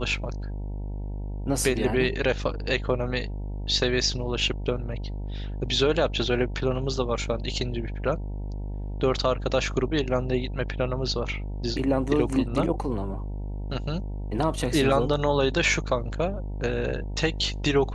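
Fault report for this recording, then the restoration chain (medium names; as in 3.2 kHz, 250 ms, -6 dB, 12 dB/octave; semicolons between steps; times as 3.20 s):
buzz 50 Hz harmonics 19 -32 dBFS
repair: de-hum 50 Hz, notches 19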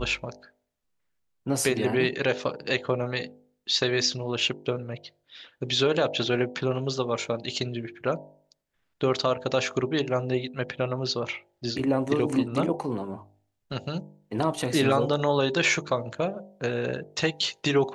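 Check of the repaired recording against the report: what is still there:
nothing left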